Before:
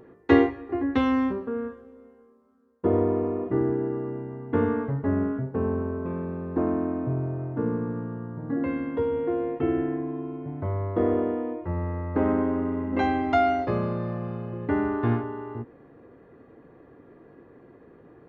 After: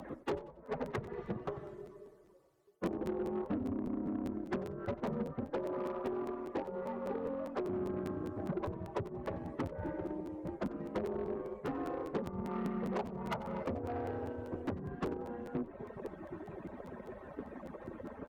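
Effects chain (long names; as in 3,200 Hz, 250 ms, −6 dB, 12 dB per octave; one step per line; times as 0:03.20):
harmonic-percussive split with one part muted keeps percussive
treble cut that deepens with the level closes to 780 Hz, closed at −35.5 dBFS
0:05.53–0:07.69: high-pass filter 340 Hz 12 dB per octave
dynamic equaliser 950 Hz, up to +4 dB, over −56 dBFS, Q 1.1
downward compressor 8 to 1, threshold −45 dBFS, peak gain reduction 24 dB
sine wavefolder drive 5 dB, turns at −32 dBFS
harmonic generator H 6 −18 dB, 8 −24 dB, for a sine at −31.5 dBFS
frequency shifter +16 Hz
echo with shifted repeats 92 ms, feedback 31%, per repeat +44 Hz, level −18 dB
regular buffer underruns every 0.20 s, samples 512, repeat, from 0:00.65
level +3.5 dB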